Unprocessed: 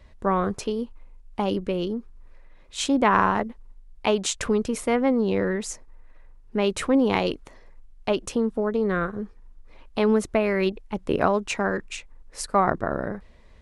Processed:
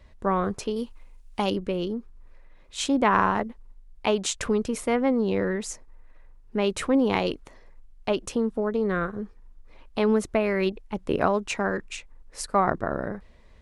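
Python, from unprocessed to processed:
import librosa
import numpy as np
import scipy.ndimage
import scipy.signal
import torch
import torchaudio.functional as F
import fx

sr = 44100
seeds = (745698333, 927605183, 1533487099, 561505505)

y = fx.high_shelf(x, sr, hz=2100.0, db=11.0, at=(0.76, 1.5))
y = F.gain(torch.from_numpy(y), -1.5).numpy()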